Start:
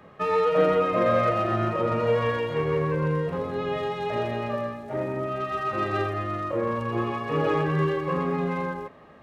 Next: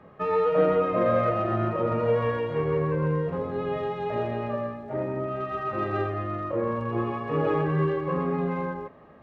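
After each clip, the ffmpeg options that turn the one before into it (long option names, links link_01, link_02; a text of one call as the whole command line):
ffmpeg -i in.wav -af "lowpass=frequency=1400:poles=1" out.wav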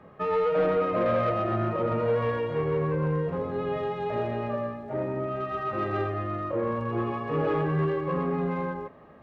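ffmpeg -i in.wav -af "asoftclip=type=tanh:threshold=-17.5dB" out.wav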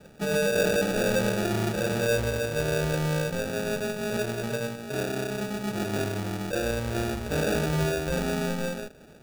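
ffmpeg -i in.wav -af "acrusher=samples=42:mix=1:aa=0.000001" out.wav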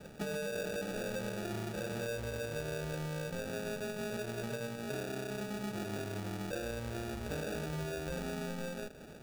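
ffmpeg -i in.wav -af "acompressor=threshold=-36dB:ratio=10" out.wav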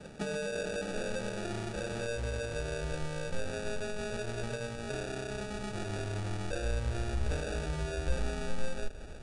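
ffmpeg -i in.wav -af "asubboost=boost=10:cutoff=57,volume=2.5dB" -ar 22050 -c:a libvorbis -b:a 64k out.ogg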